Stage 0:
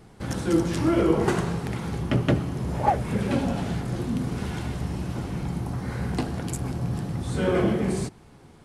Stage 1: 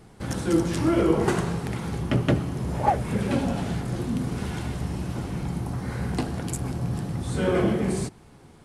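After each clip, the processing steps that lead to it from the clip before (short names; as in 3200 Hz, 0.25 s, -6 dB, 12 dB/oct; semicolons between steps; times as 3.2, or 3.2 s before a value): bell 9400 Hz +2.5 dB 0.77 oct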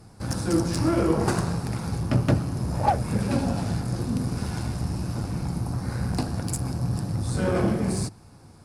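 thirty-one-band EQ 100 Hz +8 dB, 400 Hz -6 dB, 2000 Hz -6 dB, 3150 Hz -9 dB, 5000 Hz +8 dB, 10000 Hz +5 dB; added harmonics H 8 -28 dB, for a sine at -8.5 dBFS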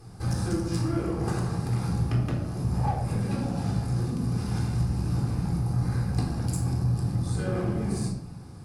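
compressor, threshold -29 dBFS, peak gain reduction 13 dB; reverb RT60 0.70 s, pre-delay 3 ms, DRR 1 dB; gain -2.5 dB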